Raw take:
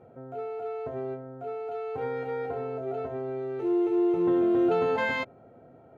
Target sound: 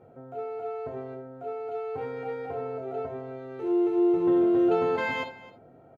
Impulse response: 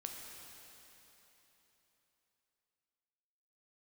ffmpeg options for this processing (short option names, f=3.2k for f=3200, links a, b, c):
-filter_complex "[0:a]aecho=1:1:264:0.119[a];[1:a]atrim=start_sample=2205,afade=t=out:st=0.13:d=0.01,atrim=end_sample=6174[b];[a][b]afir=irnorm=-1:irlink=0,volume=3.5dB"